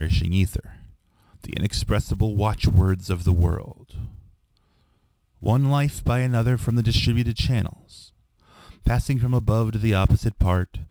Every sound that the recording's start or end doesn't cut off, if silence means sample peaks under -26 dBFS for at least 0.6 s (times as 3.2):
1.46–4.05
5.45–7.67